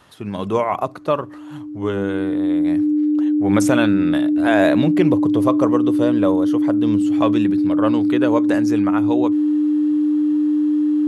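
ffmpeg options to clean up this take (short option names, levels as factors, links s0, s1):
-af "bandreject=f=300:w=30"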